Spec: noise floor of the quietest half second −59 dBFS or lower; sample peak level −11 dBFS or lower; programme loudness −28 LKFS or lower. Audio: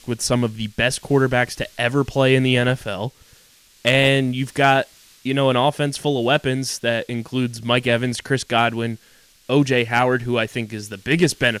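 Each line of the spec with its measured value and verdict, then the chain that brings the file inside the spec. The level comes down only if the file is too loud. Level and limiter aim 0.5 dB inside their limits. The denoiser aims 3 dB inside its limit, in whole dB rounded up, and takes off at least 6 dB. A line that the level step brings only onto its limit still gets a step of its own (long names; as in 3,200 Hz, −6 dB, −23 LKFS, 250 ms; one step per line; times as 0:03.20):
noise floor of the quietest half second −53 dBFS: out of spec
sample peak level −4.5 dBFS: out of spec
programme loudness −19.5 LKFS: out of spec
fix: level −9 dB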